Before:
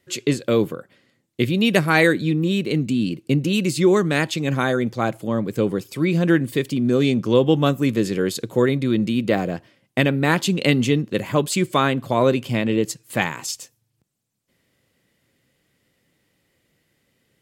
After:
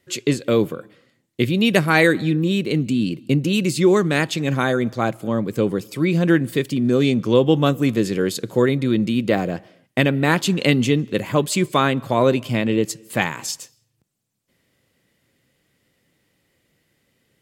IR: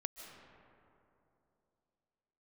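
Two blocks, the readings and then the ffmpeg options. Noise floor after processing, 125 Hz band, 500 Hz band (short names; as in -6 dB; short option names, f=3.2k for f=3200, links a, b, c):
-69 dBFS, +1.0 dB, +1.0 dB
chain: -filter_complex "[0:a]asplit=2[a][b];[1:a]atrim=start_sample=2205,afade=t=out:st=0.35:d=0.01,atrim=end_sample=15876[c];[b][c]afir=irnorm=-1:irlink=0,volume=-16.5dB[d];[a][d]amix=inputs=2:normalize=0"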